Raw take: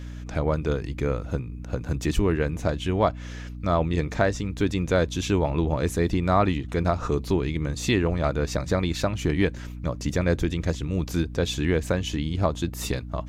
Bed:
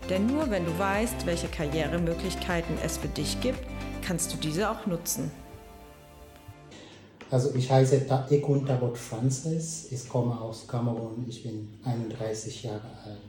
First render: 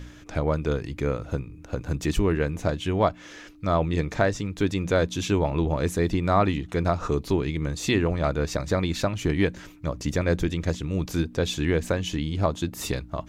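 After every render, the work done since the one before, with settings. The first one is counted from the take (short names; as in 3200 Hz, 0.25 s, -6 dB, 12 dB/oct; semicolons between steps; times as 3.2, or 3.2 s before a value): de-hum 60 Hz, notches 4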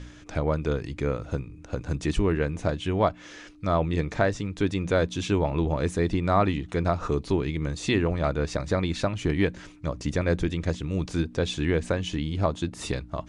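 elliptic low-pass 9700 Hz, stop band 40 dB; dynamic EQ 6300 Hz, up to -4 dB, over -47 dBFS, Q 0.91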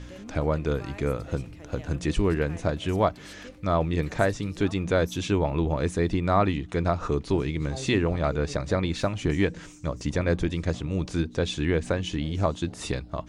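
add bed -17.5 dB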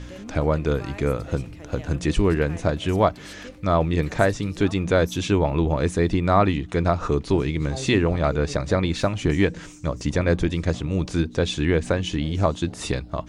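gain +4 dB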